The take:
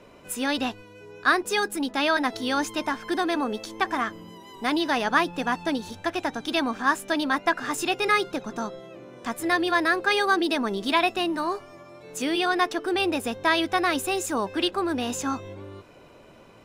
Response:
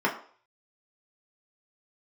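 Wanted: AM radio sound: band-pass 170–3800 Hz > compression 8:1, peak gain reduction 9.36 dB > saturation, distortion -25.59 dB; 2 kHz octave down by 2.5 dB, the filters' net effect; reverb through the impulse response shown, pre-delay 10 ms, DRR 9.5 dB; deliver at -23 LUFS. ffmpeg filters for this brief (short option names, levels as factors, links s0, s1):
-filter_complex "[0:a]equalizer=f=2000:t=o:g=-3,asplit=2[s0][s1];[1:a]atrim=start_sample=2205,adelay=10[s2];[s1][s2]afir=irnorm=-1:irlink=0,volume=0.0708[s3];[s0][s3]amix=inputs=2:normalize=0,highpass=170,lowpass=3800,acompressor=threshold=0.0562:ratio=8,asoftclip=threshold=0.133,volume=2.51"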